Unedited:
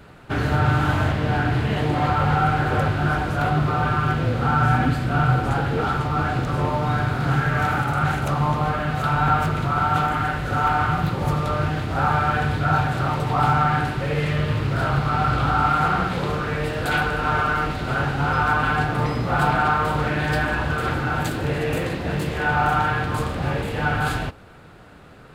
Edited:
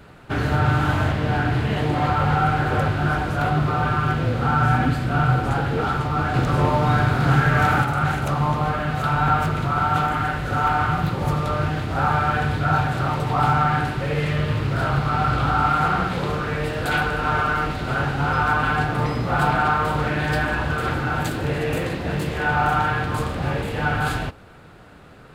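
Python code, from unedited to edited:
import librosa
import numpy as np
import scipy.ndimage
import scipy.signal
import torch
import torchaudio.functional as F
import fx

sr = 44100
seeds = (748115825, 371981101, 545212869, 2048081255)

y = fx.edit(x, sr, fx.clip_gain(start_s=6.34, length_s=1.51, db=3.5), tone=tone)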